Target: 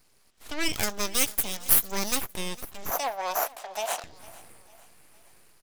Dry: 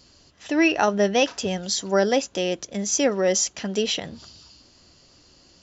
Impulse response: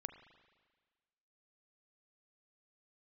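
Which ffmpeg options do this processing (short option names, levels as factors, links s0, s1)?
-filter_complex "[0:a]aeval=exprs='0.501*(cos(1*acos(clip(val(0)/0.501,-1,1)))-cos(1*PI/2))+0.0398*(cos(6*acos(clip(val(0)/0.501,-1,1)))-cos(6*PI/2))':c=same,highshelf=f=5200:g=9.5,acrossover=split=1300[s0][s1];[s1]dynaudnorm=f=140:g=5:m=2.51[s2];[s0][s2]amix=inputs=2:normalize=0,aeval=exprs='abs(val(0))':c=same,asettb=1/sr,asplit=3[s3][s4][s5];[s3]atrim=end=0.734[s6];[s4]atrim=start=0.73:end=2.18,asetpts=PTS-STARTPTS,afade=t=in:d=0.004:c=qsin,afade=t=out:st=1.446:d=0.004:c=qsin,aemphasis=mode=production:type=50fm[s7];[s5]atrim=start=2.176[s8];[s6][s7]acrossfade=d=0.004:c1=hsin:c2=qsin[s9];[s9][s8]acrossfade=d=0.004:c1=qsin:c2=hsin,asettb=1/sr,asplit=3[s10][s11][s12];[s10]atrim=end=2.904[s13];[s11]atrim=start=2.9:end=4.04,asetpts=PTS-STARTPTS,afade=t=in:d=0.004:c=qsin,afade=t=out:st=1.136:d=0.004:c=qsin,highpass=f=690:t=q:w=4.9[s14];[s12]atrim=start=4.036[s15];[s13][s14]acrossfade=d=0.004:c1=hsin:c2=qsin[s16];[s16][s15]acrossfade=d=0.004:c1=qsin:c2=hsin,asplit=2[s17][s18];[s18]aecho=0:1:454|908|1362:0.0891|0.0401|0.018[s19];[s17][s19]amix=inputs=2:normalize=0,volume=0.282"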